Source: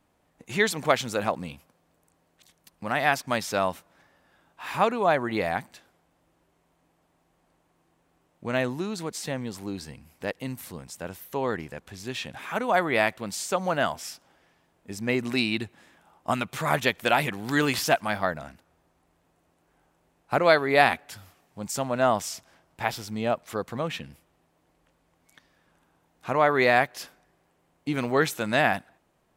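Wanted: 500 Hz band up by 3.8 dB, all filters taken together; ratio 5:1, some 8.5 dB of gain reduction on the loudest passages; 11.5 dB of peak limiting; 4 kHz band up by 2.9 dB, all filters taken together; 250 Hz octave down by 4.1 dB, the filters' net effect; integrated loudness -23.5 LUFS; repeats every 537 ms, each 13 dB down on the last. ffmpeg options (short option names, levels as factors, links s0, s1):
-af "equalizer=f=250:t=o:g=-7.5,equalizer=f=500:t=o:g=6.5,equalizer=f=4000:t=o:g=3.5,acompressor=threshold=0.0891:ratio=5,alimiter=limit=0.106:level=0:latency=1,aecho=1:1:537|1074|1611:0.224|0.0493|0.0108,volume=2.82"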